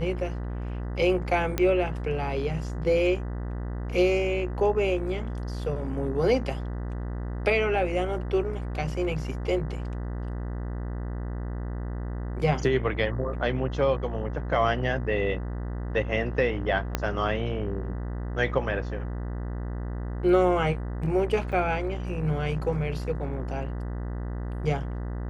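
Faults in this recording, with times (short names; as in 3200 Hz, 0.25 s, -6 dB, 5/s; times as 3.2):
buzz 60 Hz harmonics 33 -32 dBFS
1.58 pop -11 dBFS
16.95 pop -10 dBFS
21.52–21.53 gap 5.6 ms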